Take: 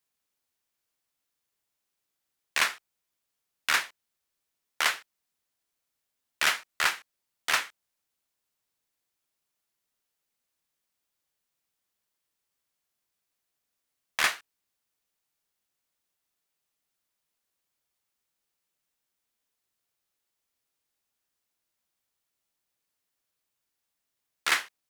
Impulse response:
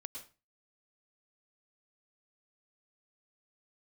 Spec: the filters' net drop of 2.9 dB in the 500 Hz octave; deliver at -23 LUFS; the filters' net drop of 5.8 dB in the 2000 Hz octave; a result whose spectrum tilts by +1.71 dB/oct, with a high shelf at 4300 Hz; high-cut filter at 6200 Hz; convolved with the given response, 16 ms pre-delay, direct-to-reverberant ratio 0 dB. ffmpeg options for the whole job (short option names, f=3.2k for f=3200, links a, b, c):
-filter_complex "[0:a]lowpass=6.2k,equalizer=f=500:t=o:g=-3.5,equalizer=f=2k:t=o:g=-8.5,highshelf=f=4.3k:g=6.5,asplit=2[a][b];[1:a]atrim=start_sample=2205,adelay=16[c];[b][c]afir=irnorm=-1:irlink=0,volume=3.5dB[d];[a][d]amix=inputs=2:normalize=0,volume=5.5dB"